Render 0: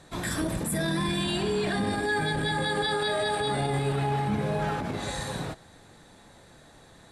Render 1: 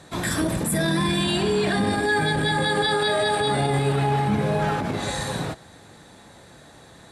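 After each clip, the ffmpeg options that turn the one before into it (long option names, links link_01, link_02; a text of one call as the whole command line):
ffmpeg -i in.wav -af "highpass=58,volume=5.5dB" out.wav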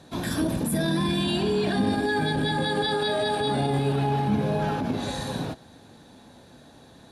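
ffmpeg -i in.wav -af "equalizer=frequency=250:width_type=o:width=0.33:gain=8,equalizer=frequency=1250:width_type=o:width=0.33:gain=-5,equalizer=frequency=2000:width_type=o:width=0.33:gain=-8,equalizer=frequency=8000:width_type=o:width=0.33:gain=-10,volume=-3dB" out.wav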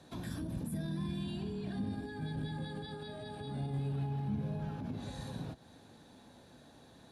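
ffmpeg -i in.wav -filter_complex "[0:a]acrossover=split=200[link_01][link_02];[link_02]acompressor=threshold=-38dB:ratio=8[link_03];[link_01][link_03]amix=inputs=2:normalize=0,volume=-7.5dB" out.wav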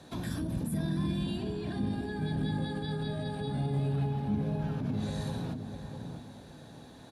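ffmpeg -i in.wav -filter_complex "[0:a]asplit=2[link_01][link_02];[link_02]adelay=654,lowpass=frequency=980:poles=1,volume=-5dB,asplit=2[link_03][link_04];[link_04]adelay=654,lowpass=frequency=980:poles=1,volume=0.29,asplit=2[link_05][link_06];[link_06]adelay=654,lowpass=frequency=980:poles=1,volume=0.29,asplit=2[link_07][link_08];[link_08]adelay=654,lowpass=frequency=980:poles=1,volume=0.29[link_09];[link_01][link_03][link_05][link_07][link_09]amix=inputs=5:normalize=0,volume=5.5dB" out.wav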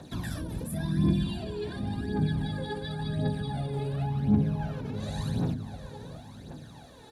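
ffmpeg -i in.wav -af "aphaser=in_gain=1:out_gain=1:delay=2.4:decay=0.63:speed=0.92:type=triangular" out.wav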